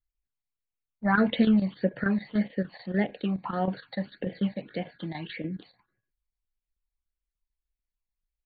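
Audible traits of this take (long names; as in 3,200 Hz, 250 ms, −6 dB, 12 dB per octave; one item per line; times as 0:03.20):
phaser sweep stages 8, 1.7 Hz, lowest notch 400–1,300 Hz
chopped level 6.8 Hz, depth 65%, duty 85%
AC-3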